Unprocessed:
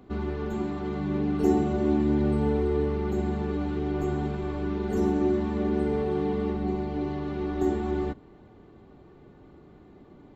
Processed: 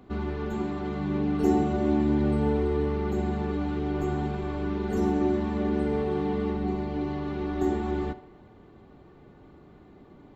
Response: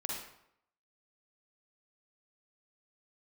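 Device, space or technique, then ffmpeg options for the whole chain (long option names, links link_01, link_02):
filtered reverb send: -filter_complex "[0:a]asplit=2[link_01][link_02];[link_02]highpass=frequency=350:width=0.5412,highpass=frequency=350:width=1.3066,lowpass=5500[link_03];[1:a]atrim=start_sample=2205[link_04];[link_03][link_04]afir=irnorm=-1:irlink=0,volume=-13dB[link_05];[link_01][link_05]amix=inputs=2:normalize=0"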